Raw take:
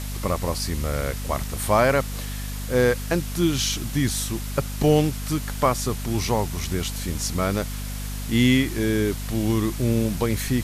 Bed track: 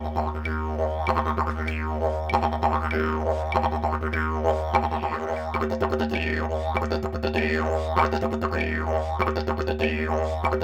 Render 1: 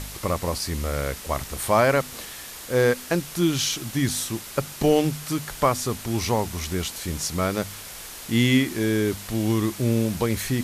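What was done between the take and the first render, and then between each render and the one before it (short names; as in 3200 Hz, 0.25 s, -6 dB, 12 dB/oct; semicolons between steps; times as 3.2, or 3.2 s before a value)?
de-hum 50 Hz, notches 5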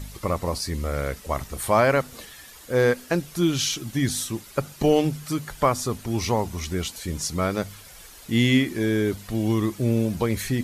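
denoiser 10 dB, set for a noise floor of -39 dBFS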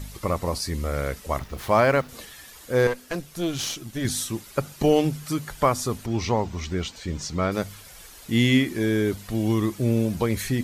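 1.39–2.09 median filter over 5 samples; 2.87–4.05 tube stage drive 19 dB, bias 0.75; 6.06–7.52 running mean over 4 samples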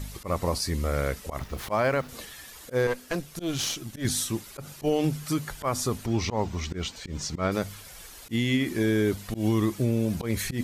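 auto swell 0.112 s; limiter -15.5 dBFS, peak gain reduction 7.5 dB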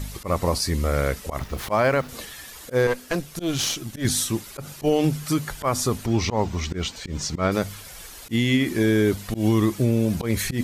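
gain +4.5 dB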